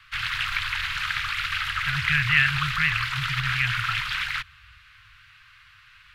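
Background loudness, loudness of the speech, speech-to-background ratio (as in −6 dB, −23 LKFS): −26.0 LKFS, −25.0 LKFS, 1.0 dB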